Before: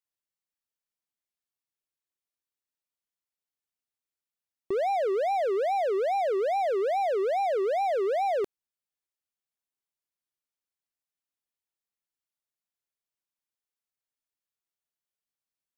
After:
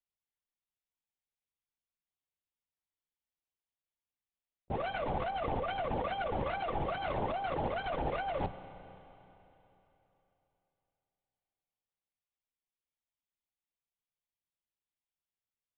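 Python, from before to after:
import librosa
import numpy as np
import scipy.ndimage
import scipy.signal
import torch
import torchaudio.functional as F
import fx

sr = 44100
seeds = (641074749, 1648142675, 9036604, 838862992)

y = fx.lower_of_two(x, sr, delay_ms=6.1)
y = fx.peak_eq(y, sr, hz=1500.0, db=-8.5, octaves=0.31)
y = fx.comb_fb(y, sr, f0_hz=390.0, decay_s=0.21, harmonics='all', damping=0.0, mix_pct=40)
y = fx.over_compress(y, sr, threshold_db=-34.0, ratio=-0.5)
y = fx.lpc_vocoder(y, sr, seeds[0], excitation='whisper', order=10)
y = fx.rev_schroeder(y, sr, rt60_s=3.4, comb_ms=33, drr_db=12.0)
y = fx.doppler_dist(y, sr, depth_ms=0.17)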